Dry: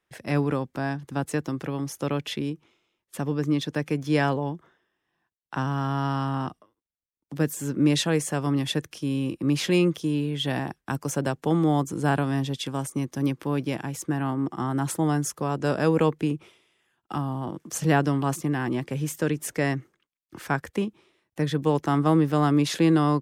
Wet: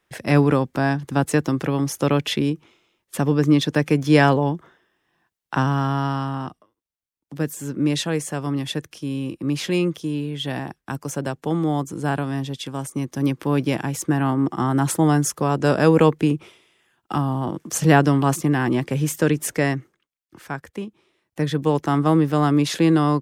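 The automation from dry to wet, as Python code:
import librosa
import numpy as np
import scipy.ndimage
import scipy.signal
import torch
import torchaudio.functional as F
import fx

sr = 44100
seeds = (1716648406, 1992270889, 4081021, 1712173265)

y = fx.gain(x, sr, db=fx.line((5.55, 8.0), (6.4, 0.0), (12.7, 0.0), (13.61, 6.5), (19.45, 6.5), (20.37, -4.0), (20.87, -4.0), (21.4, 3.0)))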